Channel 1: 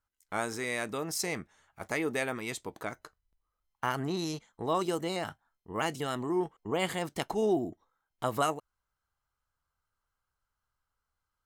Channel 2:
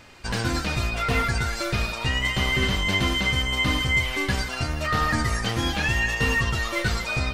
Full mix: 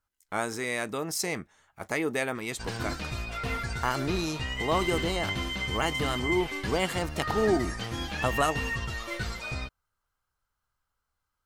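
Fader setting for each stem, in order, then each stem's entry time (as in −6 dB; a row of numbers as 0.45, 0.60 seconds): +2.5, −9.0 decibels; 0.00, 2.35 seconds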